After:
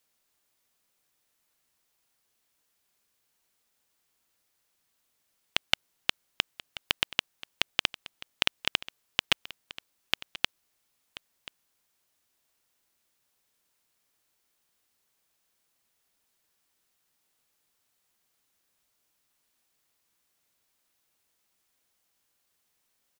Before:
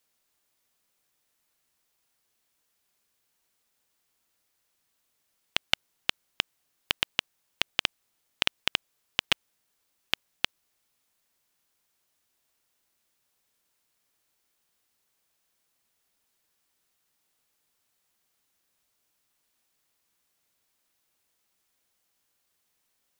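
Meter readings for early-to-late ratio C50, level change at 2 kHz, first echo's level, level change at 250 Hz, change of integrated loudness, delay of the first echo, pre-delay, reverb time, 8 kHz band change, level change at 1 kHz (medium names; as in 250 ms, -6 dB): no reverb, 0.0 dB, -17.5 dB, 0.0 dB, 0.0 dB, 1033 ms, no reverb, no reverb, 0.0 dB, 0.0 dB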